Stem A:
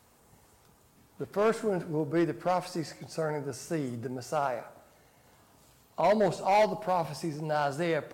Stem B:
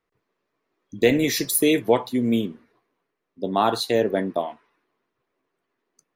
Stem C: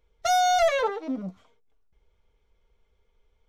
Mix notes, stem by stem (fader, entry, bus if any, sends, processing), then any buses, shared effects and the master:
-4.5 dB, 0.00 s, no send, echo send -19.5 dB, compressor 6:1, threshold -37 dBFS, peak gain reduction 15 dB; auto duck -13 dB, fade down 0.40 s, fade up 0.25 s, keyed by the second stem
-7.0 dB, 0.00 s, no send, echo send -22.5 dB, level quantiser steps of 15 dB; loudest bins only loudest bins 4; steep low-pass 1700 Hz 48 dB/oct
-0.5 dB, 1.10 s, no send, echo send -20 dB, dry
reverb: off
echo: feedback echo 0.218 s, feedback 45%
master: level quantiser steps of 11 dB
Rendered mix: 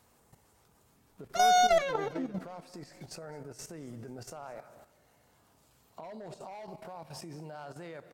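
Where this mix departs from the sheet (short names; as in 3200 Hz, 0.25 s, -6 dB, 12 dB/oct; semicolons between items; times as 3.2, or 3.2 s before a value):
stem A -4.5 dB -> +2.0 dB; stem B: muted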